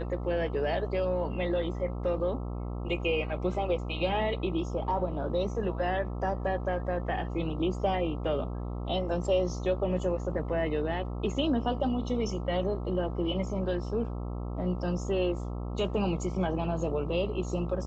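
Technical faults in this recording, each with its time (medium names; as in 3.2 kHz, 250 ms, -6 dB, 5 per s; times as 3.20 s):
buzz 60 Hz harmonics 22 -35 dBFS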